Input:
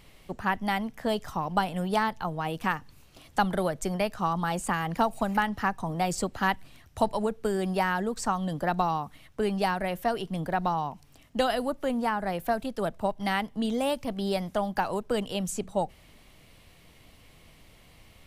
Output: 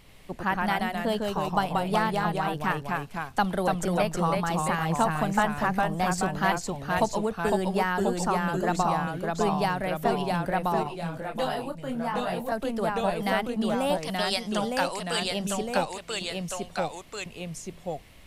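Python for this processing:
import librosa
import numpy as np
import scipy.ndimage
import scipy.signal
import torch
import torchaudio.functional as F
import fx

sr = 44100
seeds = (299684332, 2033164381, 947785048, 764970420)

y = fx.weighting(x, sr, curve='ITU-R 468', at=(13.95, 15.22))
y = fx.echo_pitch(y, sr, ms=89, semitones=-1, count=2, db_per_echo=-3.0)
y = fx.detune_double(y, sr, cents=20, at=(10.83, 12.52))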